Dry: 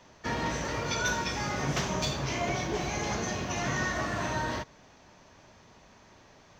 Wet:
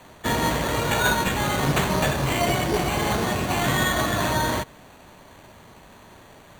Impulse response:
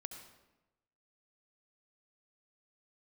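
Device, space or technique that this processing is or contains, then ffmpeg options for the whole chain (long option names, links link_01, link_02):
crushed at another speed: -af "asetrate=22050,aresample=44100,acrusher=samples=17:mix=1:aa=0.000001,asetrate=88200,aresample=44100,volume=8.5dB"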